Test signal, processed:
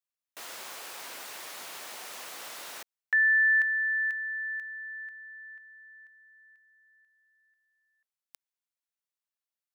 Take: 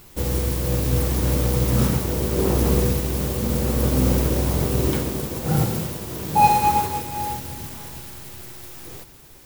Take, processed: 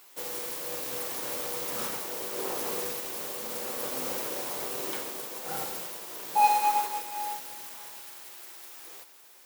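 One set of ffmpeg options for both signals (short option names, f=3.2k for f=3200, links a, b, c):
-af "highpass=640,volume=-5dB"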